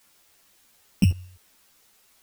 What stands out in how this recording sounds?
a buzz of ramps at a fixed pitch in blocks of 16 samples
tremolo saw up 1.8 Hz, depth 85%
a quantiser's noise floor 10 bits, dither triangular
a shimmering, thickened sound

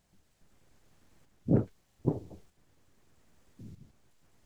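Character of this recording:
tremolo saw up 0.8 Hz, depth 45%

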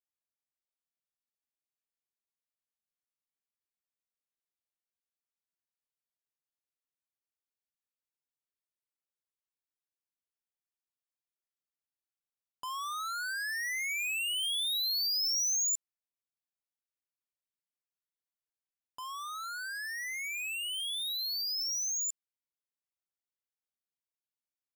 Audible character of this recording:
background noise floor −96 dBFS
spectral slope −3.0 dB per octave

